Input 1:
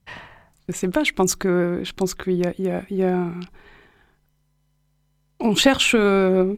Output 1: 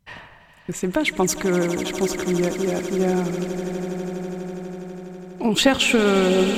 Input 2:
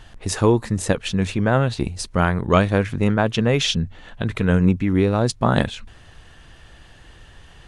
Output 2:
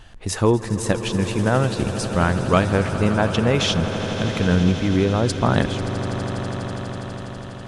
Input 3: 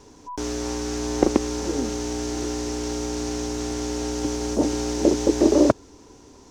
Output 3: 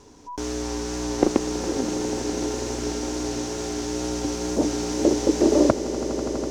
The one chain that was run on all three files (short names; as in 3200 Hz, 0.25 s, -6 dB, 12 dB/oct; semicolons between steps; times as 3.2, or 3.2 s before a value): wow and flutter 23 cents; swelling echo 82 ms, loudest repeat 8, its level -16 dB; gain -1 dB